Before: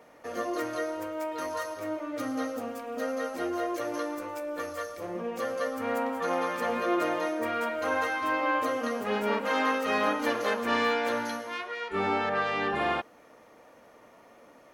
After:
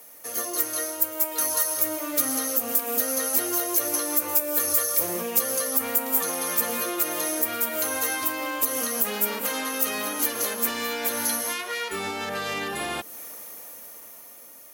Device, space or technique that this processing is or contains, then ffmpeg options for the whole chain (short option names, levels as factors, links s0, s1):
FM broadcast chain: -filter_complex "[0:a]highpass=49,dynaudnorm=f=550:g=7:m=3.76,acrossover=split=440|3100[s0][s1][s2];[s0]acompressor=threshold=0.0398:ratio=4[s3];[s1]acompressor=threshold=0.0398:ratio=4[s4];[s2]acompressor=threshold=0.00631:ratio=4[s5];[s3][s4][s5]amix=inputs=3:normalize=0,aemphasis=mode=production:type=75fm,alimiter=limit=0.126:level=0:latency=1:release=139,asoftclip=type=hard:threshold=0.0944,lowpass=f=15000:w=0.5412,lowpass=f=15000:w=1.3066,aemphasis=mode=production:type=75fm,volume=0.708"